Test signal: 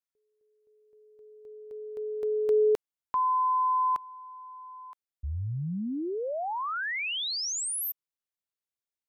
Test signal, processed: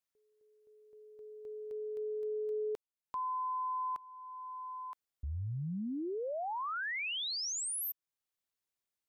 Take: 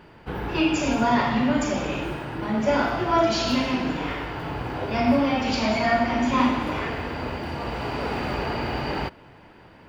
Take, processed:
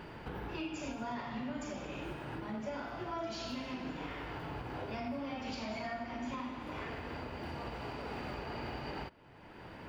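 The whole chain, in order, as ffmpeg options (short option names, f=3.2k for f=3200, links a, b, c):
-af "acompressor=threshold=-38dB:ratio=5:attack=0.11:release=940:knee=6:detection=peak,volume=2dB"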